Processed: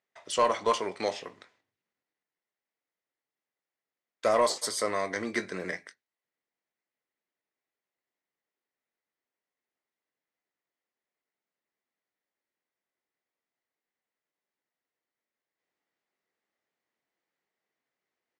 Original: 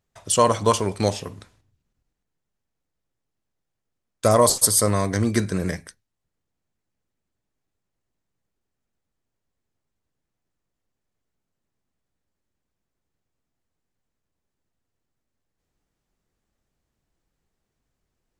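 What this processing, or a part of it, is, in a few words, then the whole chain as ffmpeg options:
intercom: -filter_complex "[0:a]highpass=390,lowpass=4800,equalizer=frequency=2000:width_type=o:width=0.3:gain=8.5,asoftclip=type=tanh:threshold=-9.5dB,asplit=2[link_01][link_02];[link_02]adelay=22,volume=-12dB[link_03];[link_01][link_03]amix=inputs=2:normalize=0,volume=-5dB"

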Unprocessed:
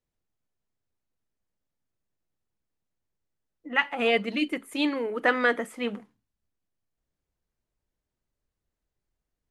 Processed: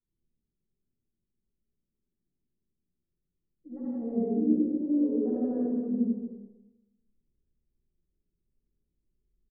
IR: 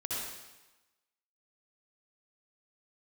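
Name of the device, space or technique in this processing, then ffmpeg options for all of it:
next room: -filter_complex "[0:a]lowpass=frequency=370:width=0.5412,lowpass=frequency=370:width=1.3066,aecho=1:1:5.3:0.42[link_01];[1:a]atrim=start_sample=2205[link_02];[link_01][link_02]afir=irnorm=-1:irlink=0,aecho=1:1:89|239:0.631|0.376"

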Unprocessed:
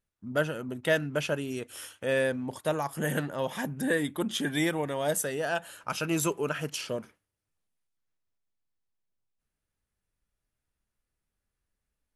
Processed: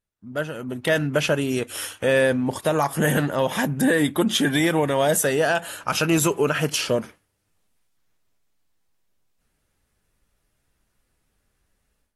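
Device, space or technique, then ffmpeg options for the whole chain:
low-bitrate web radio: -af "dynaudnorm=framelen=480:gausssize=3:maxgain=14.5dB,alimiter=limit=-8.5dB:level=0:latency=1:release=60,volume=-1.5dB" -ar 44100 -c:a aac -b:a 48k

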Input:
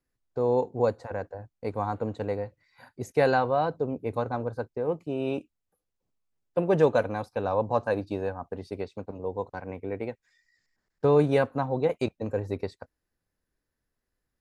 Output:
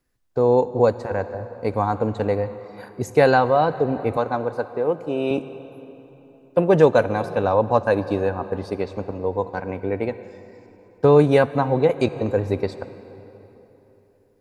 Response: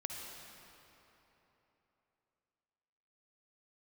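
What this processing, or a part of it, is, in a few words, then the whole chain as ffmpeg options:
ducked reverb: -filter_complex "[0:a]asplit=3[link_01][link_02][link_03];[1:a]atrim=start_sample=2205[link_04];[link_02][link_04]afir=irnorm=-1:irlink=0[link_05];[link_03]apad=whole_len=635410[link_06];[link_05][link_06]sidechaincompress=threshold=-26dB:ratio=8:attack=48:release=419,volume=-7dB[link_07];[link_01][link_07]amix=inputs=2:normalize=0,asettb=1/sr,asplit=3[link_08][link_09][link_10];[link_08]atrim=end=4.174[link_11];[link_09]atrim=start=4.17:end=5.31,asetpts=PTS-STARTPTS,afade=type=in:duration=0.004:curve=qsin,afade=type=out:start_time=1.136:duration=0.004:curve=qsin,highpass=frequency=280:poles=1[link_12];[link_10]atrim=start=5.306[link_13];[link_11][link_12]acrossfade=duration=0.004:curve1=hsin:curve2=qsin[link_14];[link_14][link_13]acrossfade=duration=0.004:curve1=qsin:curve2=hsin,volume=6dB"

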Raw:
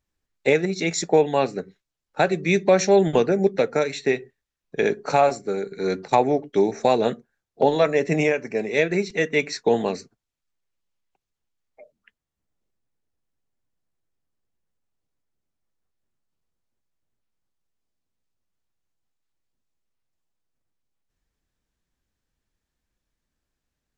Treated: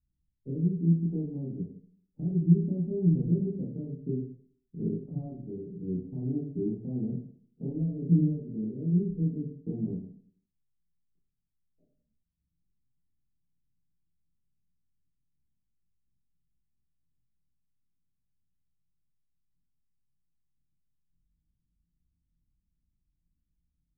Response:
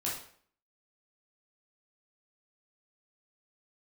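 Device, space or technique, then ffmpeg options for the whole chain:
club heard from the street: -filter_complex "[0:a]alimiter=limit=-11dB:level=0:latency=1:release=172,lowpass=frequency=220:width=0.5412,lowpass=frequency=220:width=1.3066[link_01];[1:a]atrim=start_sample=2205[link_02];[link_01][link_02]afir=irnorm=-1:irlink=0"

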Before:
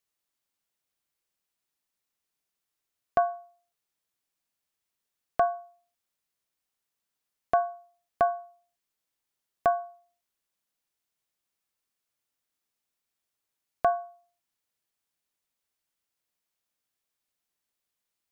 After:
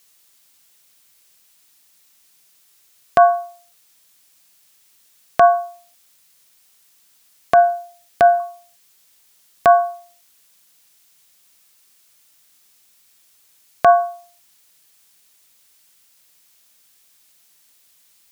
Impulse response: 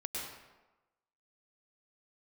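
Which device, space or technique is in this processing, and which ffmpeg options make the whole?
mastering chain: -filter_complex "[0:a]highpass=41,equalizer=frequency=170:width_type=o:width=0.32:gain=4,acompressor=threshold=-25dB:ratio=2,alimiter=level_in=21dB:limit=-1dB:release=50:level=0:latency=1,asettb=1/sr,asplit=3[link_01][link_02][link_03];[link_01]atrim=end=7.544[link_04];[link_02]atrim=start=7.54:end=8.4,asetpts=PTS-STARTPTS,afade=type=in:duration=0.004:curve=qsin,afade=type=out:start_time=0.856:duration=0.004:curve=qsin,bandreject=frequency=1100:width=7.9[link_05];[link_03]atrim=start=8.396[link_06];[link_04][link_05]acrossfade=duration=0.004:curve1=hsin:curve2=qsin[link_07];[link_07][link_06]acrossfade=duration=0.004:curve1=qsin:curve2=hsin,highshelf=frequency=2100:gain=11,volume=-2.5dB"

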